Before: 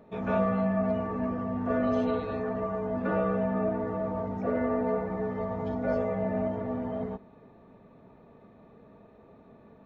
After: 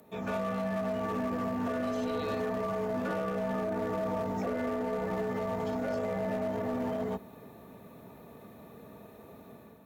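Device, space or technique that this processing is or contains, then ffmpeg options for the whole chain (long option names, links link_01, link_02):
FM broadcast chain: -filter_complex "[0:a]highpass=frequency=59:width=0.5412,highpass=frequency=59:width=1.3066,dynaudnorm=framelen=560:gausssize=3:maxgain=7dB,acrossover=split=110|230[link_01][link_02][link_03];[link_01]acompressor=threshold=-46dB:ratio=4[link_04];[link_02]acompressor=threshold=-37dB:ratio=4[link_05];[link_03]acompressor=threshold=-25dB:ratio=4[link_06];[link_04][link_05][link_06]amix=inputs=3:normalize=0,aemphasis=mode=production:type=50fm,alimiter=limit=-21.5dB:level=0:latency=1:release=23,asoftclip=type=hard:threshold=-24.5dB,lowpass=frequency=15000:width=0.5412,lowpass=frequency=15000:width=1.3066,aemphasis=mode=production:type=50fm,volume=-2.5dB"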